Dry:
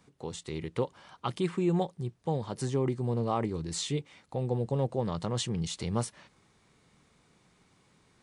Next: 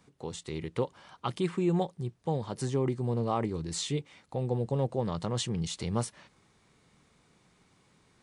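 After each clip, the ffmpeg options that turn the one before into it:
-af anull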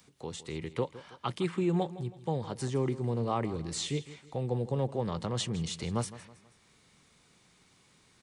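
-filter_complex "[0:a]aecho=1:1:161|322|483:0.15|0.0598|0.0239,acrossover=split=280|800|2700[s0][s1][s2][s3];[s2]crystalizer=i=3.5:c=0[s4];[s3]acompressor=mode=upward:threshold=0.00126:ratio=2.5[s5];[s0][s1][s4][s5]amix=inputs=4:normalize=0,volume=0.841"

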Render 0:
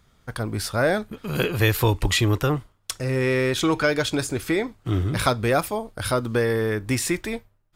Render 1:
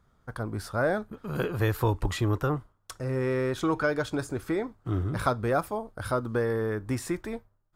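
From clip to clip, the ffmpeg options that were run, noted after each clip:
-af "highshelf=f=1800:t=q:w=1.5:g=-7.5,volume=0.531"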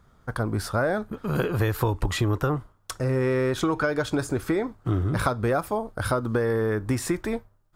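-af "acompressor=threshold=0.0398:ratio=6,volume=2.37"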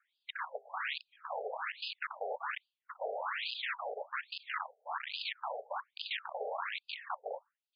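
-af "afftfilt=real='hypot(re,im)*cos(2*PI*random(0))':imag='hypot(re,im)*sin(2*PI*random(1))':win_size=512:overlap=0.75,aeval=exprs='(mod(22.4*val(0)+1,2)-1)/22.4':c=same,afftfilt=real='re*between(b*sr/1024,570*pow(3600/570,0.5+0.5*sin(2*PI*1.2*pts/sr))/1.41,570*pow(3600/570,0.5+0.5*sin(2*PI*1.2*pts/sr))*1.41)':imag='im*between(b*sr/1024,570*pow(3600/570,0.5+0.5*sin(2*PI*1.2*pts/sr))/1.41,570*pow(3600/570,0.5+0.5*sin(2*PI*1.2*pts/sr))*1.41)':win_size=1024:overlap=0.75,volume=1.19"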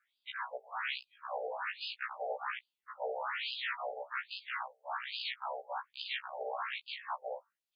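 -af "afftfilt=real='re*1.73*eq(mod(b,3),0)':imag='im*1.73*eq(mod(b,3),0)':win_size=2048:overlap=0.75,volume=1.33"

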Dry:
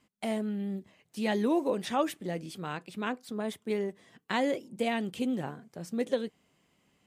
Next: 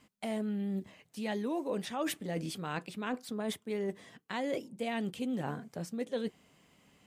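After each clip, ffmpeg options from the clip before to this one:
-af "bandreject=f=360:w=12,areverse,acompressor=threshold=0.0126:ratio=6,areverse,volume=1.88"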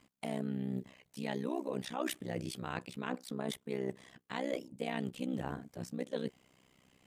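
-af "tremolo=f=64:d=0.974,volume=1.19"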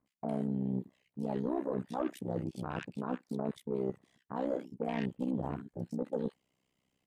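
-filter_complex "[0:a]afwtdn=0.01,aeval=exprs='0.106*(cos(1*acos(clip(val(0)/0.106,-1,1)))-cos(1*PI/2))+0.0133*(cos(5*acos(clip(val(0)/0.106,-1,1)))-cos(5*PI/2))':c=same,acrossover=split=1500[s0][s1];[s1]adelay=60[s2];[s0][s2]amix=inputs=2:normalize=0"

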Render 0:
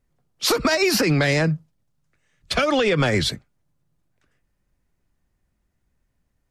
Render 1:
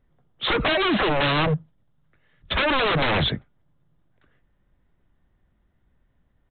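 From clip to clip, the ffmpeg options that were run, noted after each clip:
-af "equalizer=f=2500:t=o:w=0.37:g=-6.5,aresample=8000,aeval=exprs='0.0841*(abs(mod(val(0)/0.0841+3,4)-2)-1)':c=same,aresample=44100,volume=1.88"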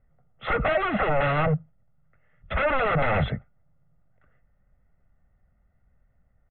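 -af "lowpass=f=2200:w=0.5412,lowpass=f=2200:w=1.3066,aecho=1:1:1.5:0.63,volume=0.75"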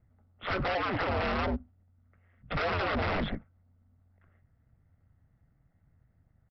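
-af "aeval=exprs='val(0)*sin(2*PI*90*n/s)':c=same,aresample=11025,asoftclip=type=hard:threshold=0.0473,aresample=44100"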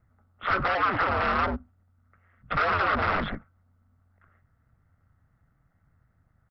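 -af "equalizer=f=1300:t=o:w=0.94:g=11"

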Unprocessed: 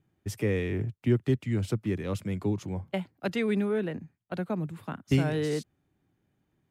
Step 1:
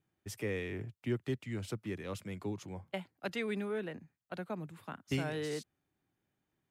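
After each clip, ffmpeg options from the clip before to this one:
-af "lowshelf=f=410:g=-8.5,volume=0.631"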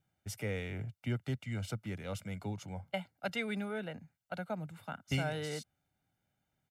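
-af "aecho=1:1:1.4:0.61"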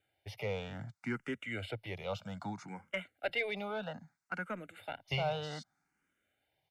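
-filter_complex "[0:a]acrossover=split=3800[s0][s1];[s1]acompressor=threshold=0.00112:ratio=4:attack=1:release=60[s2];[s0][s2]amix=inputs=2:normalize=0,asplit=2[s3][s4];[s4]highpass=f=720:p=1,volume=5.01,asoftclip=type=tanh:threshold=0.0944[s5];[s3][s5]amix=inputs=2:normalize=0,lowpass=f=3400:p=1,volume=0.501,asplit=2[s6][s7];[s7]afreqshift=0.63[s8];[s6][s8]amix=inputs=2:normalize=1,volume=1.12"

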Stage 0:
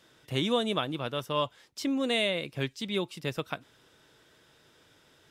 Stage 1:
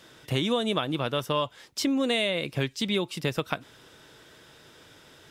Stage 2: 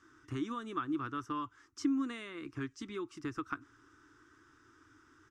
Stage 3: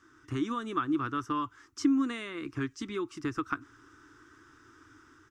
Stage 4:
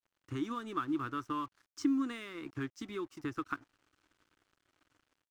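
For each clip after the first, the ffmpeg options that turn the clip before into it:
-af "acompressor=threshold=0.0251:ratio=4,volume=2.66"
-af "firequalizer=gain_entry='entry(110,0);entry(170,-17);entry(300,7);entry(550,-25);entry(1200,6);entry(2200,-10);entry(3800,-18);entry(5900,-4);entry(13000,-26)':delay=0.05:min_phase=1,volume=0.422"
-af "dynaudnorm=f=120:g=5:m=1.58,volume=1.26"
-af "aeval=exprs='sgn(val(0))*max(abs(val(0))-0.00211,0)':c=same,volume=0.596"

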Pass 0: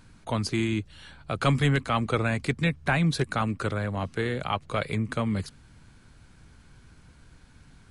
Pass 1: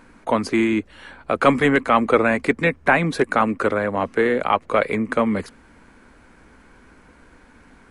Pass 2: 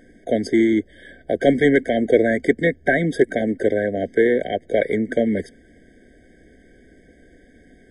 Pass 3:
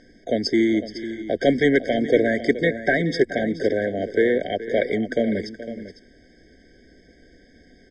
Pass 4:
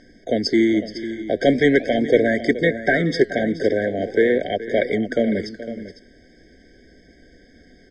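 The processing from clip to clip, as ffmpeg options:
-af "equalizer=f=125:t=o:w=1:g=-11,equalizer=f=250:t=o:w=1:g=9,equalizer=f=500:t=o:w=1:g=9,equalizer=f=1000:t=o:w=1:g=7,equalizer=f=2000:t=o:w=1:g=8,equalizer=f=4000:t=o:w=1:g=-4,volume=1.12"
-af "equalizer=f=380:w=1.7:g=5.5,afftfilt=real='re*eq(mod(floor(b*sr/1024/760),2),0)':imag='im*eq(mod(floor(b*sr/1024/760),2),0)':win_size=1024:overlap=0.75,volume=0.891"
-af "lowpass=f=5300:t=q:w=6.3,aecho=1:1:424|503:0.168|0.211,volume=0.75"
-af "flanger=delay=1:depth=8.6:regen=-86:speed=0.42:shape=sinusoidal,volume=2.11"

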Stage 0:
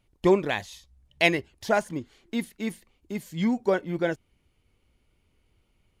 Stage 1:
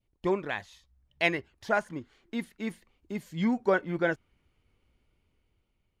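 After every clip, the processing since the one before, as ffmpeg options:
-af "adynamicequalizer=threshold=0.00794:dfrequency=1400:dqfactor=1.2:tfrequency=1400:tqfactor=1.2:attack=5:release=100:ratio=0.375:range=3.5:mode=boostabove:tftype=bell,dynaudnorm=f=210:g=9:m=2.24,highshelf=f=6600:g=-8.5,volume=0.376"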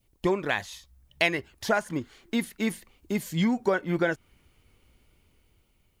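-af "acompressor=threshold=0.0316:ratio=4,crystalizer=i=1.5:c=0,volume=2.51"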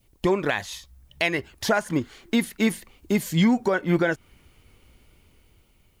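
-af "alimiter=limit=0.141:level=0:latency=1:release=197,volume=2.11"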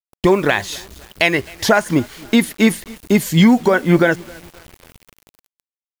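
-af "aecho=1:1:263|526|789:0.0631|0.0259|0.0106,acrusher=bits=7:mix=0:aa=0.000001,volume=2.66"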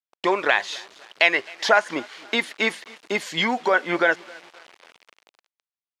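-af "highpass=620,lowpass=4500,volume=0.891"

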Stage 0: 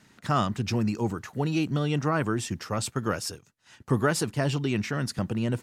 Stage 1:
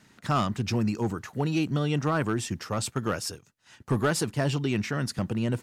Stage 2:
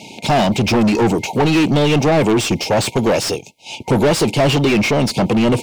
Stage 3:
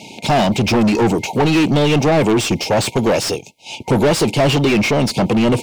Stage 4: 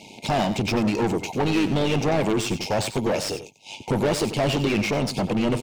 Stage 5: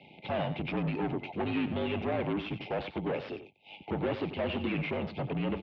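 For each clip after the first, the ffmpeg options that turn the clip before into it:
-af "asoftclip=type=hard:threshold=0.133"
-filter_complex "[0:a]afftfilt=real='re*(1-between(b*sr/4096,940,2100))':imag='im*(1-between(b*sr/4096,940,2100))':win_size=4096:overlap=0.75,asplit=2[s0][s1];[s1]highpass=f=720:p=1,volume=25.1,asoftclip=type=tanh:threshold=0.168[s2];[s0][s2]amix=inputs=2:normalize=0,lowpass=f=2300:p=1,volume=0.501,volume=2.82"
-af anull
-filter_complex "[0:a]tremolo=f=100:d=0.519,asplit=2[s0][s1];[s1]aecho=0:1:92:0.266[s2];[s0][s2]amix=inputs=2:normalize=0,volume=0.501"
-af "highpass=f=160:t=q:w=0.5412,highpass=f=160:t=q:w=1.307,lowpass=f=3400:t=q:w=0.5176,lowpass=f=3400:t=q:w=0.7071,lowpass=f=3400:t=q:w=1.932,afreqshift=-51,volume=0.355"

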